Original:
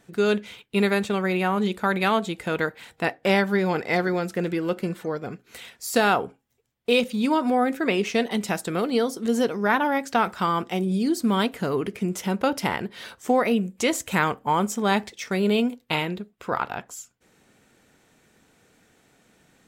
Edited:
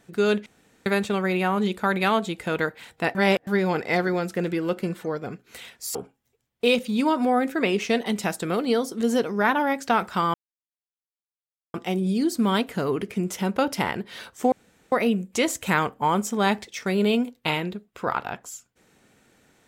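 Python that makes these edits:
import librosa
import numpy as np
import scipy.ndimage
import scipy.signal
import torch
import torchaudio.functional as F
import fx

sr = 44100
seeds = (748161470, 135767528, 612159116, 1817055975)

y = fx.edit(x, sr, fx.room_tone_fill(start_s=0.46, length_s=0.4),
    fx.reverse_span(start_s=3.15, length_s=0.32),
    fx.cut(start_s=5.95, length_s=0.25),
    fx.insert_silence(at_s=10.59, length_s=1.4),
    fx.insert_room_tone(at_s=13.37, length_s=0.4), tone=tone)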